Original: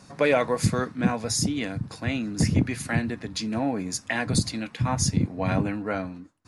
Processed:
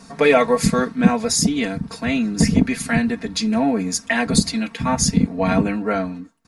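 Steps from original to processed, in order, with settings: comb 4.4 ms, depth 88%; trim +4.5 dB

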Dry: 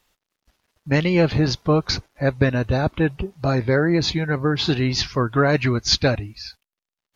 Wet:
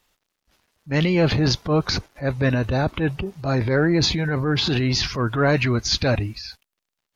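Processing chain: transient shaper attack -7 dB, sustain +7 dB

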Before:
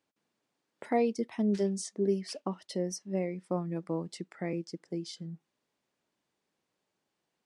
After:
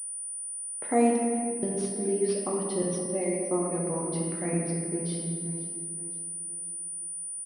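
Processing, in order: 2.82–3.84 s: high-pass 210 Hz 24 dB/octave; feedback delay 520 ms, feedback 48%, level -17.5 dB; 1.13–1.63 s: inverted gate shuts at -35 dBFS, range -27 dB; reverberation RT60 2.2 s, pre-delay 7 ms, DRR -3 dB; class-D stage that switches slowly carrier 9.4 kHz

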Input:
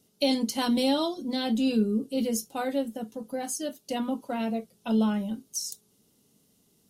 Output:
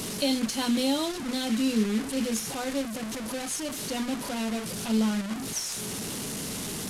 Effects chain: one-bit delta coder 64 kbps, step -27.5 dBFS; dynamic bell 720 Hz, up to -4 dB, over -39 dBFS, Q 0.94

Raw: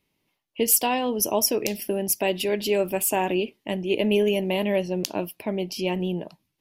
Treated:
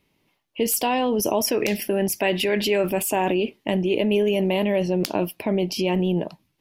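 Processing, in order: 1.44–2.91 s: dynamic bell 1.8 kHz, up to +8 dB, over -46 dBFS, Q 1.3; in parallel at -2 dB: compressor with a negative ratio -28 dBFS, ratio -0.5; on the sum: wavefolder -7.5 dBFS; treble shelf 4.2 kHz -5.5 dB

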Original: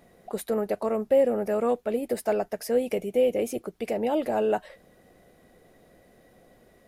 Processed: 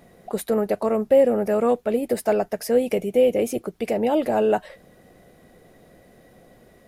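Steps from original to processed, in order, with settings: peaking EQ 140 Hz +3 dB 1.3 oct; trim +4.5 dB

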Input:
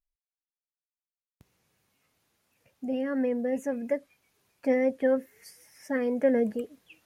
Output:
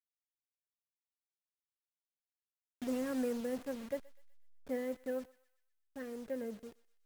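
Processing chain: send-on-delta sampling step -36 dBFS; Doppler pass-by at 1.68 s, 8 m/s, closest 3.1 m; thinning echo 124 ms, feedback 54%, high-pass 1.1 kHz, level -18 dB; trim +5 dB

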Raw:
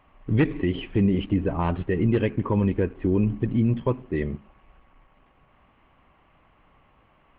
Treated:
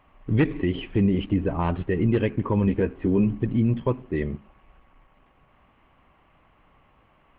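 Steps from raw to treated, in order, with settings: 2.66–3.30 s: doubling 15 ms -5.5 dB

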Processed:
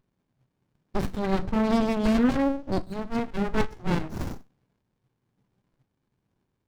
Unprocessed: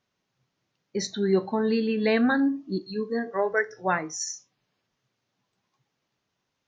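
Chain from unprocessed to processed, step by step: phaser 1.1 Hz, delay 1.7 ms, feedback 34%; sliding maximum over 65 samples; trim +5.5 dB

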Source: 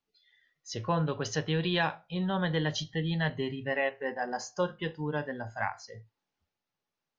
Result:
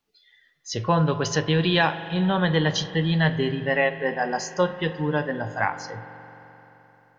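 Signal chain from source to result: spring tank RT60 3.7 s, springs 43 ms, chirp 60 ms, DRR 11.5 dB; trim +8 dB

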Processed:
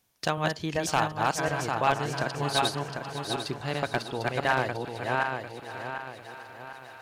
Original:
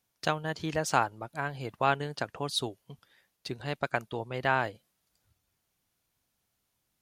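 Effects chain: backward echo that repeats 374 ms, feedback 55%, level -1.5 dB; band-stop 1.4 kHz, Q 29; in parallel at +1.5 dB: compression, threshold -44 dBFS, peak gain reduction 22.5 dB; on the sum: wavefolder -13 dBFS; thinning echo 599 ms, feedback 73%, high-pass 420 Hz, level -15 dB; on a send at -22.5 dB: reverberation, pre-delay 52 ms

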